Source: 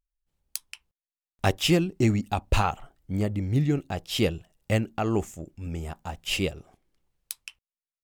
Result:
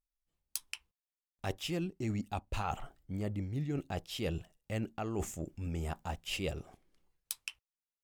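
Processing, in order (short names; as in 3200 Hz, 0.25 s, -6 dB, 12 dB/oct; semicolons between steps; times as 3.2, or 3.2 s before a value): reverse; compressor 6:1, threshold -35 dBFS, peak gain reduction 17.5 dB; reverse; spectral noise reduction 8 dB; gain +1 dB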